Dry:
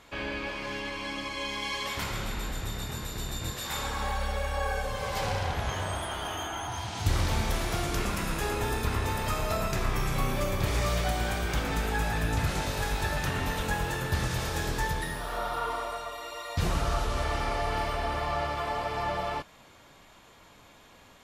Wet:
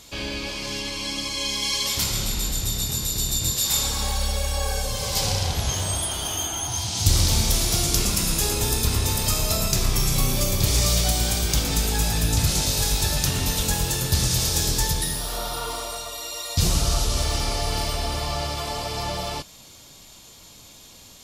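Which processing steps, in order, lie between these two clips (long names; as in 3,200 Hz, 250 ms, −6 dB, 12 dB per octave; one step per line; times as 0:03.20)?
drawn EQ curve 140 Hz 0 dB, 1,700 Hz −10 dB, 5,000 Hz +10 dB
level +7 dB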